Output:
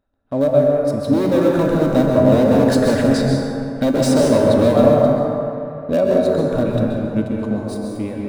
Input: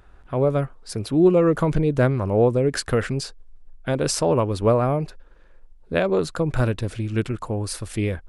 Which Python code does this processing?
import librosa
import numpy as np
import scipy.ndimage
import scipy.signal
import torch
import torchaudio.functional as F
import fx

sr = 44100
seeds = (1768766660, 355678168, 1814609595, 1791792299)

p1 = fx.doppler_pass(x, sr, speed_mps=8, closest_m=9.8, pass_at_s=3.5)
p2 = fx.dereverb_blind(p1, sr, rt60_s=0.64)
p3 = fx.leveller(p2, sr, passes=3)
p4 = (np.mod(10.0 ** (12.5 / 20.0) * p3 + 1.0, 2.0) - 1.0) / 10.0 ** (12.5 / 20.0)
p5 = p3 + F.gain(torch.from_numpy(p4), -11.0).numpy()
p6 = fx.comb_fb(p5, sr, f0_hz=90.0, decay_s=1.3, harmonics='odd', damping=0.0, mix_pct=80)
p7 = fx.small_body(p6, sr, hz=(250.0, 570.0, 3800.0), ring_ms=30, db=16)
p8 = p7 + fx.echo_tape(p7, sr, ms=161, feedback_pct=83, wet_db=-16.0, lp_hz=4800.0, drive_db=13.0, wow_cents=30, dry=0)
p9 = fx.rev_plate(p8, sr, seeds[0], rt60_s=2.4, hf_ratio=0.3, predelay_ms=115, drr_db=-1.5)
y = F.gain(torch.from_numpy(p9), 1.0).numpy()